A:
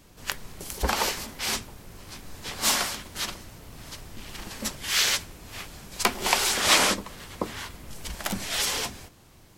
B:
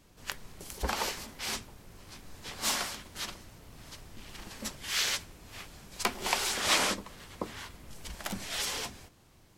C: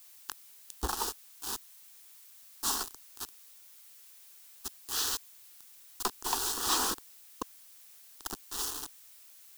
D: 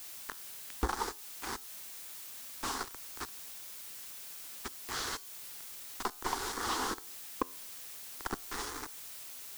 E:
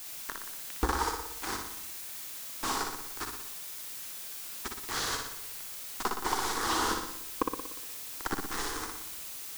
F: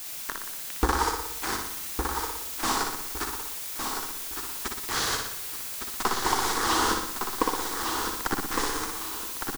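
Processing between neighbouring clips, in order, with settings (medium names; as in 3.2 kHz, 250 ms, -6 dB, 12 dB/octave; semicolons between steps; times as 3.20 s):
treble shelf 12 kHz -4 dB; trim -6.5 dB
bit crusher 5-bit; static phaser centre 590 Hz, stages 6; added noise blue -55 dBFS
compression 10:1, threshold -37 dBFS, peak gain reduction 13.5 dB; feedback comb 87 Hz, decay 0.57 s, harmonics all, mix 30%; slew-rate limiter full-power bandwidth 20 Hz; trim +12.5 dB
flutter echo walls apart 10.2 m, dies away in 0.75 s; simulated room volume 3200 m³, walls furnished, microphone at 0.59 m; trim +3 dB
feedback delay 1160 ms, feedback 31%, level -6 dB; trim +5 dB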